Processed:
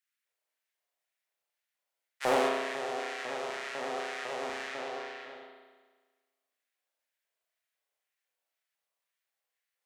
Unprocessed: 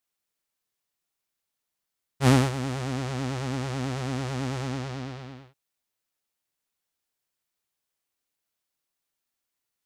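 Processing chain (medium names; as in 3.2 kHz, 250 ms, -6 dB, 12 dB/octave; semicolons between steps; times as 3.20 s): LFO high-pass square 2 Hz 570–1800 Hz; spring tank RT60 1.4 s, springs 34 ms, chirp 35 ms, DRR -1.5 dB; overload inside the chain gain 11.5 dB; trim -6 dB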